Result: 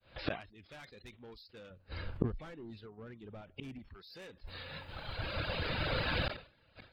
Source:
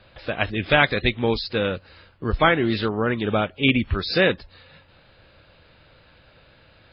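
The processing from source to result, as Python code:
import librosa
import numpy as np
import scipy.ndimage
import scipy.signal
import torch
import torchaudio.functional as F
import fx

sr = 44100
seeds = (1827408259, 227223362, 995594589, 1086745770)

y = fx.fade_in_head(x, sr, length_s=1.16)
y = fx.recorder_agc(y, sr, target_db=-14.0, rise_db_per_s=5.7, max_gain_db=30)
y = fx.dereverb_blind(y, sr, rt60_s=1.6)
y = 10.0 ** (-21.5 / 20.0) * np.tanh(y / 10.0 ** (-21.5 / 20.0))
y = fx.tilt_eq(y, sr, slope=-2.5, at=(1.7, 3.79))
y = fx.gate_flip(y, sr, shuts_db=-34.0, range_db=-38)
y = fx.sustainer(y, sr, db_per_s=140.0)
y = F.gain(torch.from_numpy(y), 13.0).numpy()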